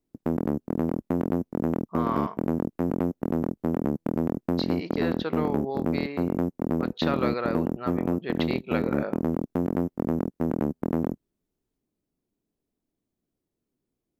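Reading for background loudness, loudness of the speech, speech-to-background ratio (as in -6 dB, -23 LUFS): -28.5 LUFS, -33.0 LUFS, -4.5 dB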